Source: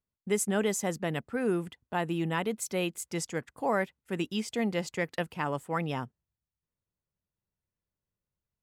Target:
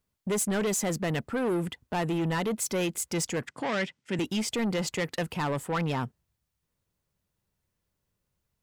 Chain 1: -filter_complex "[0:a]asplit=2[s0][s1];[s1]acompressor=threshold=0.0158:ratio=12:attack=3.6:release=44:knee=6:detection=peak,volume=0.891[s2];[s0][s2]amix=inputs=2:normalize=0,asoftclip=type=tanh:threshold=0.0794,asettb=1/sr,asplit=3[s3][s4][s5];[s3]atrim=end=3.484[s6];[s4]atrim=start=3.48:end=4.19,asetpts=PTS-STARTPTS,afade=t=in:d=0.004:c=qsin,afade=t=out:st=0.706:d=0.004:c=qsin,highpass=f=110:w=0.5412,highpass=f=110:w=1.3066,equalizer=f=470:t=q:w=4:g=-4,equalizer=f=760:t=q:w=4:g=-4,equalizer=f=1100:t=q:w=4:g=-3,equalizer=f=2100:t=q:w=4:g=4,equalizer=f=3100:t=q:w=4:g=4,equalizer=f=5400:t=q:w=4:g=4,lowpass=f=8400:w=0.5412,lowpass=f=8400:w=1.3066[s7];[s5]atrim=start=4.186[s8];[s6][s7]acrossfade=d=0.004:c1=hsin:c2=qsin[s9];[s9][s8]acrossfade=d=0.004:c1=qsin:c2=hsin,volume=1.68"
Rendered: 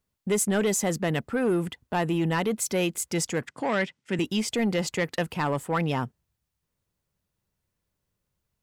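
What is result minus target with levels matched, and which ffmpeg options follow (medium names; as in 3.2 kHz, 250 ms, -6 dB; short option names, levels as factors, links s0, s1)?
saturation: distortion -7 dB
-filter_complex "[0:a]asplit=2[s0][s1];[s1]acompressor=threshold=0.0158:ratio=12:attack=3.6:release=44:knee=6:detection=peak,volume=0.891[s2];[s0][s2]amix=inputs=2:normalize=0,asoftclip=type=tanh:threshold=0.0376,asettb=1/sr,asplit=3[s3][s4][s5];[s3]atrim=end=3.484[s6];[s4]atrim=start=3.48:end=4.19,asetpts=PTS-STARTPTS,afade=t=in:d=0.004:c=qsin,afade=t=out:st=0.706:d=0.004:c=qsin,highpass=f=110:w=0.5412,highpass=f=110:w=1.3066,equalizer=f=470:t=q:w=4:g=-4,equalizer=f=760:t=q:w=4:g=-4,equalizer=f=1100:t=q:w=4:g=-3,equalizer=f=2100:t=q:w=4:g=4,equalizer=f=3100:t=q:w=4:g=4,equalizer=f=5400:t=q:w=4:g=4,lowpass=f=8400:w=0.5412,lowpass=f=8400:w=1.3066[s7];[s5]atrim=start=4.186[s8];[s6][s7]acrossfade=d=0.004:c1=hsin:c2=qsin[s9];[s9][s8]acrossfade=d=0.004:c1=qsin:c2=hsin,volume=1.68"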